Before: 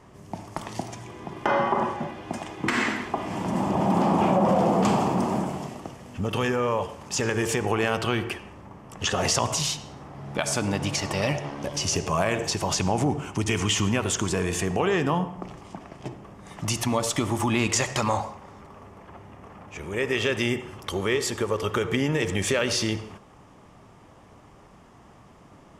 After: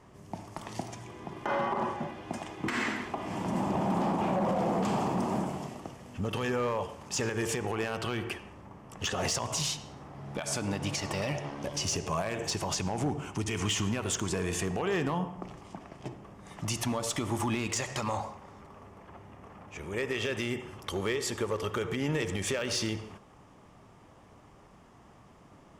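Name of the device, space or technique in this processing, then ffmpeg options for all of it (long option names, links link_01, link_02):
limiter into clipper: -af "alimiter=limit=-15dB:level=0:latency=1:release=149,asoftclip=type=hard:threshold=-18.5dB,volume=-4.5dB"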